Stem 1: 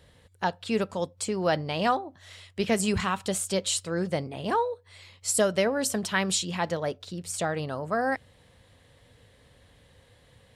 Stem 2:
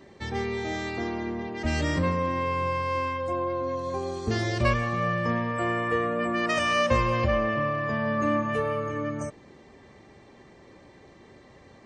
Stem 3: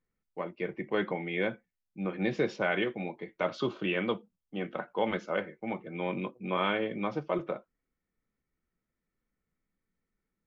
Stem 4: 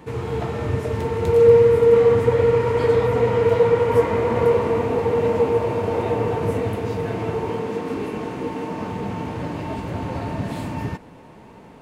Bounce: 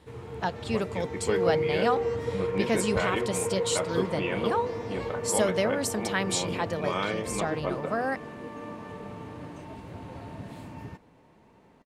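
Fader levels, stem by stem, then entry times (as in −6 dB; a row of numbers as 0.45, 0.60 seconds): −2.5, −18.0, −1.0, −14.0 decibels; 0.00, 0.35, 0.35, 0.00 seconds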